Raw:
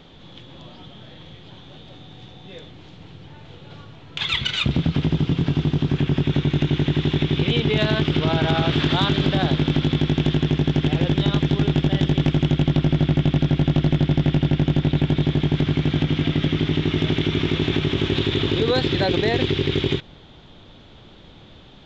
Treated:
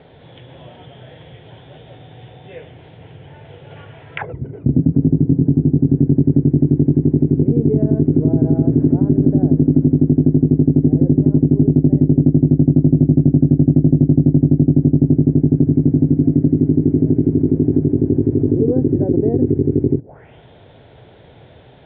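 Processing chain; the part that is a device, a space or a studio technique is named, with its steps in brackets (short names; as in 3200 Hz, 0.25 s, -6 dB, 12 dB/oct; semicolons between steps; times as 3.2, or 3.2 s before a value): envelope filter bass rig (envelope low-pass 280–4900 Hz down, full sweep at -20 dBFS; speaker cabinet 70–2000 Hz, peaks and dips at 120 Hz +4 dB, 200 Hz -9 dB, 310 Hz -5 dB, 450 Hz +5 dB, 660 Hz +5 dB, 1200 Hz -10 dB); 3.76–4.29 bell 1700 Hz +5.5 dB 1.7 oct; gain +3.5 dB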